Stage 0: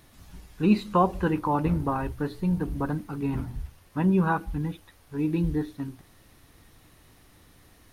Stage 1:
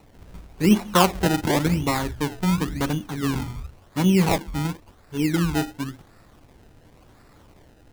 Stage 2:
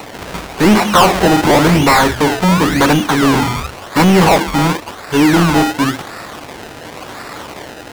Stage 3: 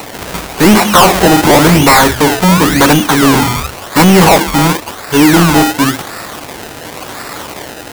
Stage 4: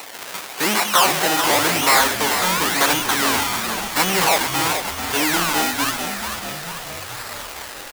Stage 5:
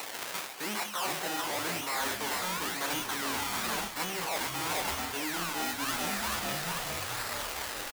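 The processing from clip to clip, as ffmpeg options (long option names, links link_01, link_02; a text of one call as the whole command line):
ffmpeg -i in.wav -filter_complex "[0:a]acrossover=split=110|340|1200[link_01][link_02][link_03][link_04];[link_01]alimiter=level_in=9dB:limit=-24dB:level=0:latency=1,volume=-9dB[link_05];[link_05][link_02][link_03][link_04]amix=inputs=4:normalize=0,acrusher=samples=27:mix=1:aa=0.000001:lfo=1:lforange=27:lforate=0.93,volume=4dB" out.wav
ffmpeg -i in.wav -filter_complex "[0:a]asplit=2[link_01][link_02];[link_02]highpass=frequency=720:poles=1,volume=33dB,asoftclip=type=tanh:threshold=-4dB[link_03];[link_01][link_03]amix=inputs=2:normalize=0,lowpass=frequency=6900:poles=1,volume=-6dB,volume=2.5dB" out.wav
ffmpeg -i in.wav -af "highshelf=frequency=7700:gain=10.5,apsyclip=5dB,volume=-1.5dB" out.wav
ffmpeg -i in.wav -filter_complex "[0:a]highpass=frequency=1200:poles=1,asplit=2[link_01][link_02];[link_02]asplit=8[link_03][link_04][link_05][link_06][link_07][link_08][link_09][link_10];[link_03]adelay=439,afreqshift=-53,volume=-8dB[link_11];[link_04]adelay=878,afreqshift=-106,volume=-12dB[link_12];[link_05]adelay=1317,afreqshift=-159,volume=-16dB[link_13];[link_06]adelay=1756,afreqshift=-212,volume=-20dB[link_14];[link_07]adelay=2195,afreqshift=-265,volume=-24.1dB[link_15];[link_08]adelay=2634,afreqshift=-318,volume=-28.1dB[link_16];[link_09]adelay=3073,afreqshift=-371,volume=-32.1dB[link_17];[link_10]adelay=3512,afreqshift=-424,volume=-36.1dB[link_18];[link_11][link_12][link_13][link_14][link_15][link_16][link_17][link_18]amix=inputs=8:normalize=0[link_19];[link_01][link_19]amix=inputs=2:normalize=0,volume=-6dB" out.wav
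ffmpeg -i in.wav -filter_complex "[0:a]areverse,acompressor=threshold=-25dB:ratio=12,areverse,asplit=2[link_01][link_02];[link_02]adelay=29,volume=-11.5dB[link_03];[link_01][link_03]amix=inputs=2:normalize=0,volume=-3.5dB" out.wav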